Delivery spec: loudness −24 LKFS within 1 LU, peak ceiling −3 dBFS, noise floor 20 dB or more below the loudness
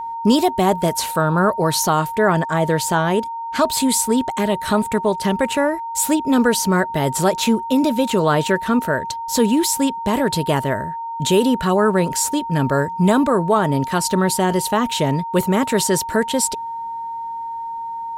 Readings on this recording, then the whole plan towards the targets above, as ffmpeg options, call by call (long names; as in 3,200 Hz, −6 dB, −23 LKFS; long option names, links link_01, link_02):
interfering tone 920 Hz; level of the tone −25 dBFS; integrated loudness −18.5 LKFS; sample peak −4.0 dBFS; target loudness −24.0 LKFS
→ -af "bandreject=frequency=920:width=30"
-af "volume=-5.5dB"